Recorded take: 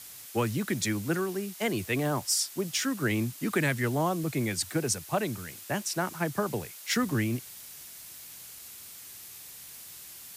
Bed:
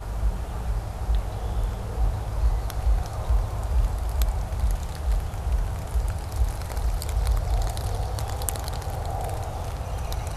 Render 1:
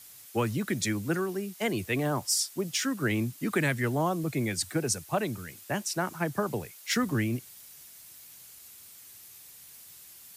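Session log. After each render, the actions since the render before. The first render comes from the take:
broadband denoise 6 dB, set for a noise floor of −47 dBFS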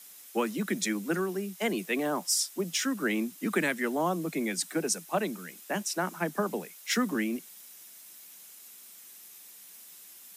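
Butterworth high-pass 170 Hz 72 dB per octave
notch filter 4,500 Hz, Q 16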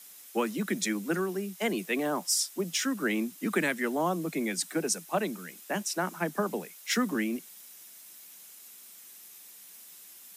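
no processing that can be heard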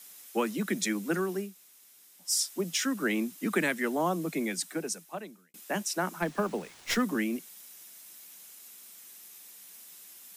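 0:01.48–0:02.27: fill with room tone, crossfade 0.16 s
0:04.37–0:05.54: fade out
0:06.22–0:07.02: windowed peak hold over 3 samples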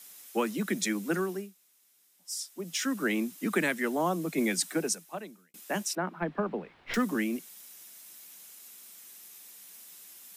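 0:01.22–0:02.91: duck −8.5 dB, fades 0.35 s
0:04.38–0:04.95: clip gain +4 dB
0:05.95–0:06.94: high-frequency loss of the air 420 metres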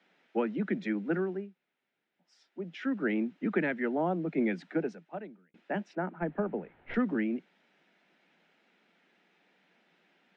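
Bessel low-pass filter 1,700 Hz, order 4
parametric band 1,100 Hz −12.5 dB 0.24 octaves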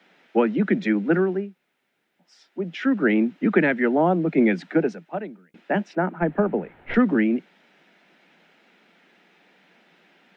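level +10.5 dB

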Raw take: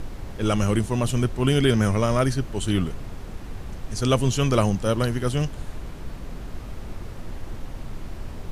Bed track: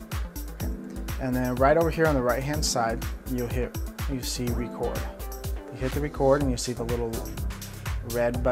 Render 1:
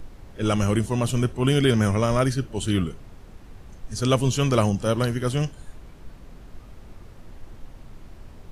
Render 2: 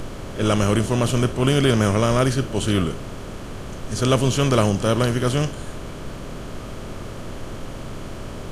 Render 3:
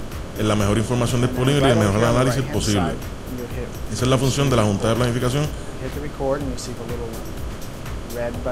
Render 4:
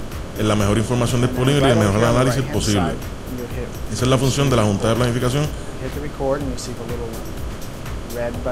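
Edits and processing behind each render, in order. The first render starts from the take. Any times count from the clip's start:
noise reduction from a noise print 9 dB
compressor on every frequency bin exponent 0.6
mix in bed track −1.5 dB
level +1.5 dB; brickwall limiter −3 dBFS, peak gain reduction 1.5 dB

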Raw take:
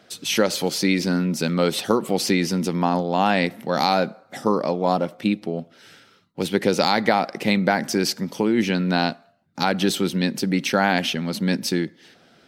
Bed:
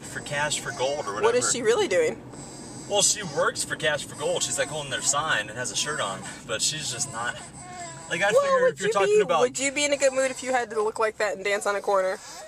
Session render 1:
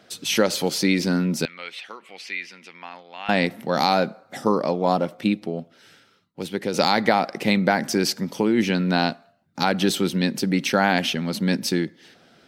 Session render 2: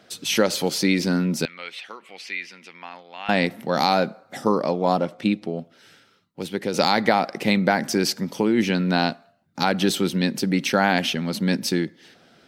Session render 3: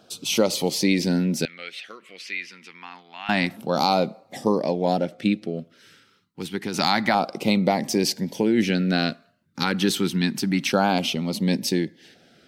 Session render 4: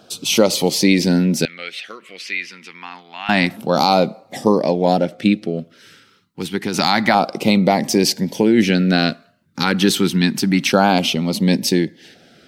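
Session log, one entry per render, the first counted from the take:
0:01.45–0:03.29: resonant band-pass 2,300 Hz, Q 3; 0:05.29–0:06.74: fade out quadratic, to −6.5 dB
0:05.00–0:05.50: low-pass filter 9,600 Hz
auto-filter notch saw down 0.28 Hz 440–2,000 Hz; tape wow and flutter 26 cents
level +6.5 dB; brickwall limiter −1 dBFS, peak gain reduction 2.5 dB

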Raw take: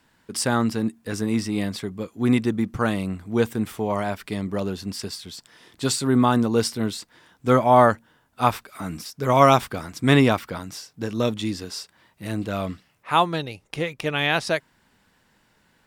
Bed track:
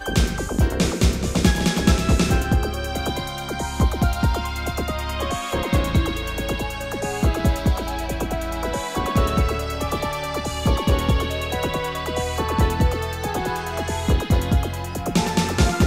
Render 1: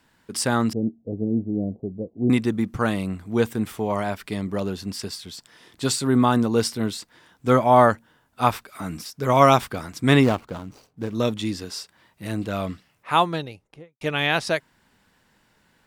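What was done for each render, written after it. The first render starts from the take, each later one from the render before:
0:00.73–0:02.30: Butterworth low-pass 680 Hz 48 dB per octave
0:10.23–0:11.15: running median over 25 samples
0:13.23–0:14.01: fade out and dull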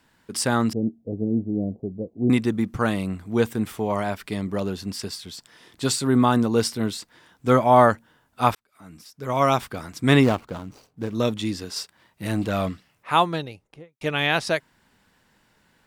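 0:08.55–0:10.16: fade in
0:11.76–0:12.69: leveller curve on the samples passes 1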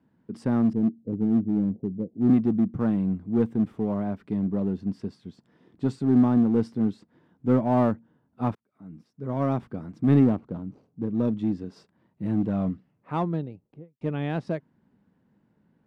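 resonant band-pass 200 Hz, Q 1.2
in parallel at −5.5 dB: hard clipping −25.5 dBFS, distortion −6 dB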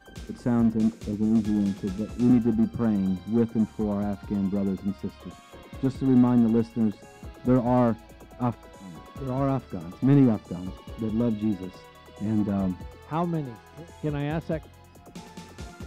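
mix in bed track −22.5 dB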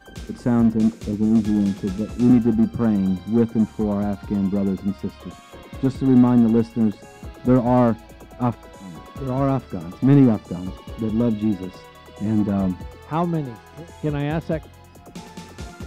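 level +5 dB

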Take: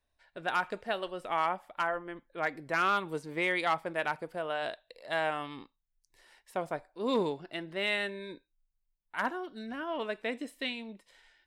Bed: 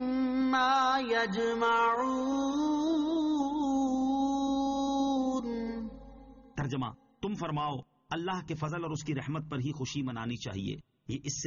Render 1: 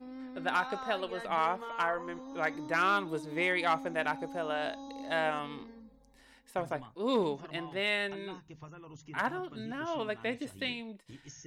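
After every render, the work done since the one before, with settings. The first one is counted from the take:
mix in bed −14.5 dB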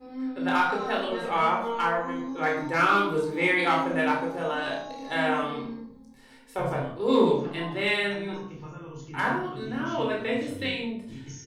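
double-tracking delay 30 ms −6 dB
rectangular room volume 990 cubic metres, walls furnished, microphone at 4.2 metres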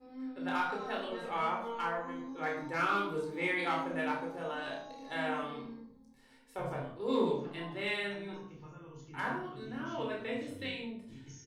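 level −9.5 dB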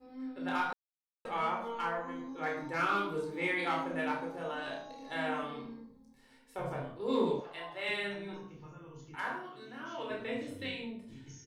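0:00.73–0:01.25: silence
0:07.40–0:07.89: low shelf with overshoot 410 Hz −13 dB, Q 1.5
0:09.15–0:10.10: high-pass filter 570 Hz 6 dB per octave

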